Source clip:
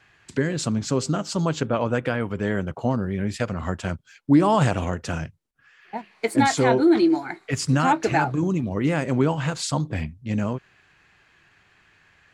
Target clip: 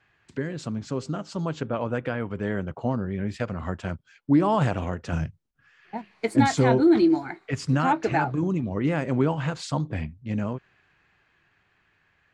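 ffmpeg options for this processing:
ffmpeg -i in.wav -filter_complex "[0:a]aemphasis=mode=reproduction:type=50fm,dynaudnorm=framelen=230:gausssize=17:maxgain=6dB,asettb=1/sr,asplit=3[link_01][link_02][link_03];[link_01]atrim=end=5.124[link_04];[link_02]atrim=start=5.12:end=7.3,asetpts=PTS-STARTPTS,afade=type=in:duration=0.004:curve=qsin,afade=type=out:start_time=2.176:duration=0.004:curve=qsin,bass=frequency=250:gain=7,treble=frequency=4000:gain=6[link_05];[link_03]atrim=start=7.296[link_06];[link_04][link_05]acrossfade=duration=0.004:curve1=hsin:curve2=qsin[link_07];[link_07][link_06]acrossfade=duration=0.004:curve1=qsin:curve2=hsin,volume=-7dB" out.wav

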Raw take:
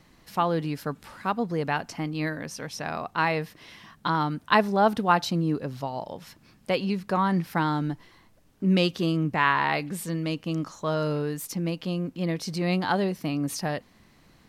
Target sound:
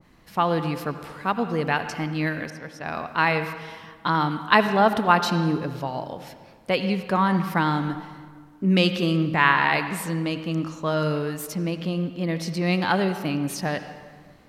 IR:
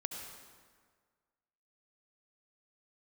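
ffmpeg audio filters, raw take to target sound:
-filter_complex "[0:a]asettb=1/sr,asplit=3[link_01][link_02][link_03];[link_01]atrim=end=2.504[link_04];[link_02]atrim=start=2.5:end=3.08,asetpts=PTS-STARTPTS,afade=type=in:duration=0.004:curve=qsin,afade=type=out:start_time=0.576:duration=0.004:curve=qsin,agate=range=-33dB:threshold=-29dB:ratio=3:detection=peak[link_05];[link_03]atrim=start=3.076[link_06];[link_04][link_05]acrossfade=duration=0.004:curve1=hsin:curve2=qsin[link_07];[link_07][link_06]acrossfade=duration=0.004:curve1=qsin:curve2=hsin,asplit=2[link_08][link_09];[1:a]atrim=start_sample=2205,lowpass=3500[link_10];[link_09][link_10]afir=irnorm=-1:irlink=0,volume=-1.5dB[link_11];[link_08][link_11]amix=inputs=2:normalize=0,adynamicequalizer=threshold=0.0224:dfrequency=1500:dqfactor=0.7:tfrequency=1500:tqfactor=0.7:attack=5:release=100:ratio=0.375:range=3:mode=boostabove:tftype=highshelf,volume=-2.5dB"

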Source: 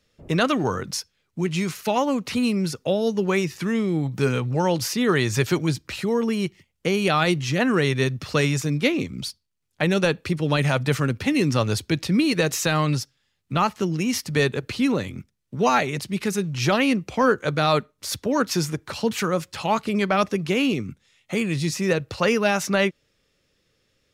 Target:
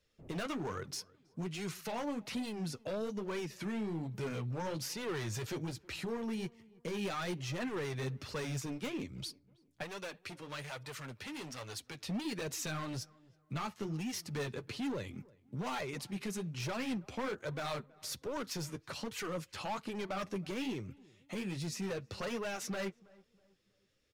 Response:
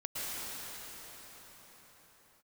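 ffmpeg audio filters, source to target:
-filter_complex "[0:a]asoftclip=type=hard:threshold=-21dB,flanger=delay=1.9:depth=8.3:regen=-31:speed=1.2:shape=sinusoidal,alimiter=level_in=1.5dB:limit=-24dB:level=0:latency=1:release=285,volume=-1.5dB,asettb=1/sr,asplit=3[link_01][link_02][link_03];[link_01]atrim=end=9.834[link_04];[link_02]atrim=start=9.83:end=12.08,asetpts=PTS-STARTPTS,afade=type=in:duration=0.004:curve=qsin,afade=type=out:start_time=2.246:duration=0.004:curve=qsin,lowshelf=frequency=470:gain=-12[link_05];[link_03]atrim=start=12.076[link_06];[link_04][link_05]acrossfade=duration=0.004:curve1=hsin:curve2=qsin[link_07];[link_07][link_06]acrossfade=duration=0.004:curve1=qsin:curve2=hsin,asplit=2[link_08][link_09];[link_09]adelay=323,lowpass=frequency=1300:poles=1,volume=-23dB,asplit=2[link_10][link_11];[link_11]adelay=323,lowpass=frequency=1300:poles=1,volume=0.38,asplit=2[link_12][link_13];[link_13]adelay=323,lowpass=frequency=1300:poles=1,volume=0.38[link_14];[link_08][link_10][link_12][link_14]amix=inputs=4:normalize=0,volume=-6dB"

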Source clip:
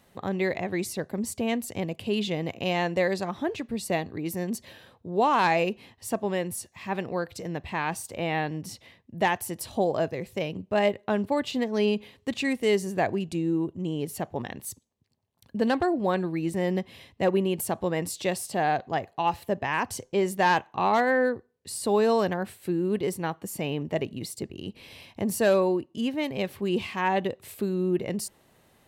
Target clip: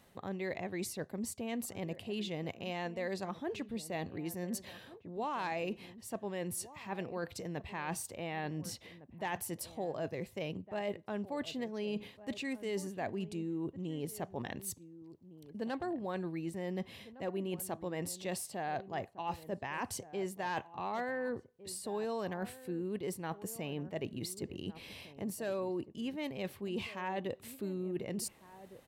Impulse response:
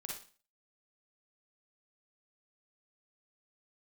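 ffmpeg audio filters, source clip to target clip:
-filter_complex "[0:a]areverse,acompressor=threshold=-34dB:ratio=4,areverse,asplit=2[link_01][link_02];[link_02]adelay=1458,volume=-15dB,highshelf=frequency=4000:gain=-32.8[link_03];[link_01][link_03]amix=inputs=2:normalize=0,volume=-2.5dB"

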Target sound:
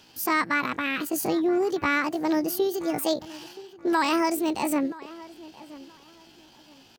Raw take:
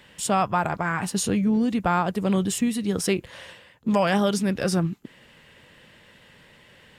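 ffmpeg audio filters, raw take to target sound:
ffmpeg -i in.wav -filter_complex "[0:a]asetrate=72056,aresample=44100,atempo=0.612027,asplit=2[link_01][link_02];[link_02]adelay=976,lowpass=frequency=2500:poles=1,volume=-18.5dB,asplit=2[link_03][link_04];[link_04]adelay=976,lowpass=frequency=2500:poles=1,volume=0.26[link_05];[link_01][link_03][link_05]amix=inputs=3:normalize=0,volume=-2dB" out.wav

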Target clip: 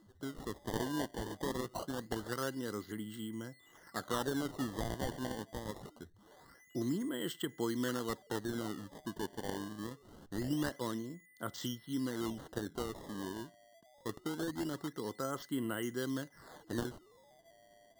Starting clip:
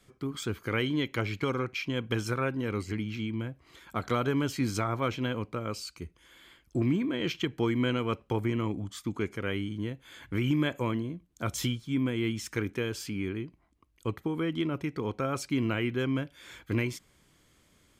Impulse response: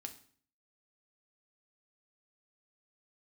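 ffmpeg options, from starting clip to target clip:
-af "aeval=exprs='val(0)+0.00178*sin(2*PI*2000*n/s)':channel_layout=same,highpass=170,lowpass=3800,aemphasis=mode=production:type=cd,acrusher=samples=19:mix=1:aa=0.000001:lfo=1:lforange=30.4:lforate=0.24,asuperstop=centerf=2400:order=8:qfactor=3.1,volume=-6.5dB"

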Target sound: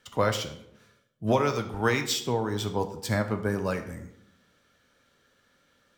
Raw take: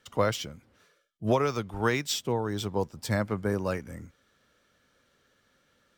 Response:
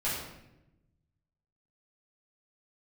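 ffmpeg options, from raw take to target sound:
-filter_complex "[0:a]asplit=2[link_01][link_02];[link_02]lowshelf=frequency=230:gain=-11[link_03];[1:a]atrim=start_sample=2205,asetrate=66150,aresample=44100[link_04];[link_03][link_04]afir=irnorm=-1:irlink=0,volume=-8dB[link_05];[link_01][link_05]amix=inputs=2:normalize=0"

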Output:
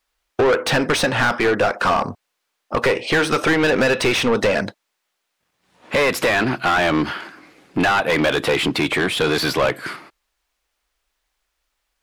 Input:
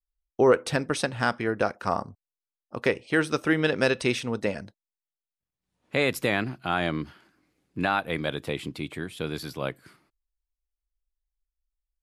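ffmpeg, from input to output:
ffmpeg -i in.wav -filter_complex "[0:a]acompressor=threshold=-27dB:ratio=6,asplit=2[link_01][link_02];[link_02]highpass=frequency=720:poles=1,volume=31dB,asoftclip=type=tanh:threshold=-11.5dB[link_03];[link_01][link_03]amix=inputs=2:normalize=0,lowpass=frequency=2500:poles=1,volume=-6dB,volume=4dB" out.wav

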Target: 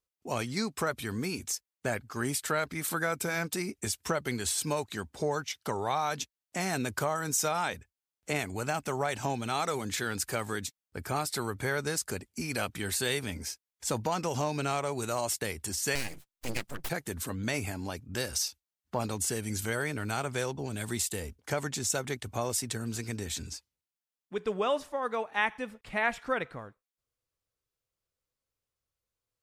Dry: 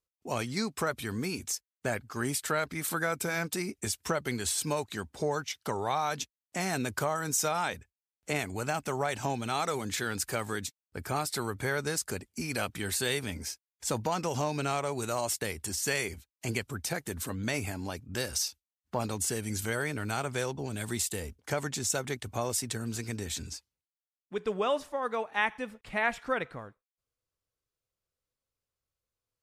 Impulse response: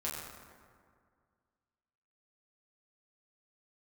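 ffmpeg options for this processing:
-filter_complex "[0:a]asettb=1/sr,asplit=3[link_01][link_02][link_03];[link_01]atrim=end=15.954[link_04];[link_02]atrim=start=15.95:end=16.9,asetpts=PTS-STARTPTS,afade=type=in:duration=0.004:curve=qsin,afade=type=out:start_time=0.946:duration=0.004:curve=qsin,aeval=exprs='abs(val(0))':channel_layout=same[link_05];[link_03]atrim=start=16.896[link_06];[link_04][link_05]acrossfade=duration=0.004:curve1=hsin:curve2=qsin[link_07];[link_07][link_06]acrossfade=duration=0.004:curve1=qsin:curve2=hsin"

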